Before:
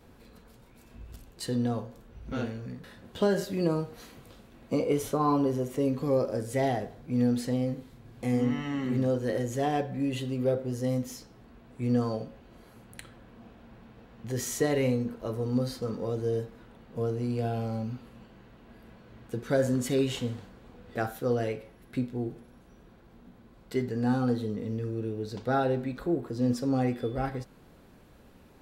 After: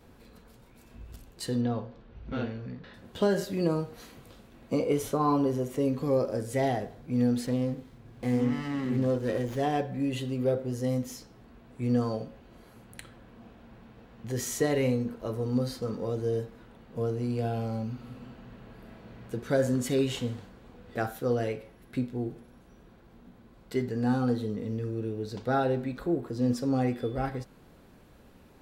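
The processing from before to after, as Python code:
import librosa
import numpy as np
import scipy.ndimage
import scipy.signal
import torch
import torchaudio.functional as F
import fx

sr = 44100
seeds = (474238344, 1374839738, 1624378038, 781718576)

y = fx.lowpass(x, sr, hz=4600.0, slope=24, at=(1.61, 2.94))
y = fx.running_max(y, sr, window=5, at=(7.46, 9.59))
y = fx.reverb_throw(y, sr, start_s=17.92, length_s=1.33, rt60_s=2.6, drr_db=-0.5)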